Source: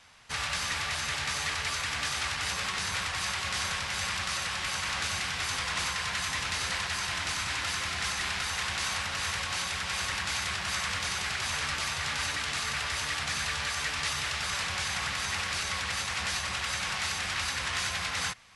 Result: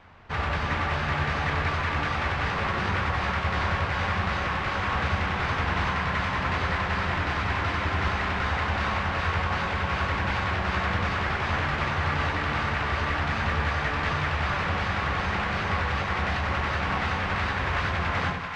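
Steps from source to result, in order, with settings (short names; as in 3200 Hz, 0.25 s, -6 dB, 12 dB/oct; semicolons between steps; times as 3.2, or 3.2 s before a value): half-waves squared off; tape spacing loss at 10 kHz 40 dB; split-band echo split 710 Hz, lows 81 ms, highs 0.388 s, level -5 dB; gain +6 dB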